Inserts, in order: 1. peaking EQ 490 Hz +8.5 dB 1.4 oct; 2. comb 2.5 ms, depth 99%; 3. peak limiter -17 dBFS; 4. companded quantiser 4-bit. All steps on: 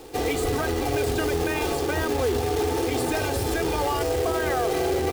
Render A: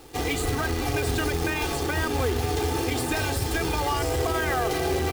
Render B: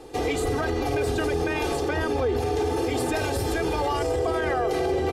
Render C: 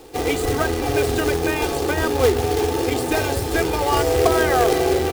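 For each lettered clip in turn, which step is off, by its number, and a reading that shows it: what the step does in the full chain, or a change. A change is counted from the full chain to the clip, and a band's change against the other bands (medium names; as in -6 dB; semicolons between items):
1, 500 Hz band -5.0 dB; 4, distortion -14 dB; 3, mean gain reduction 4.0 dB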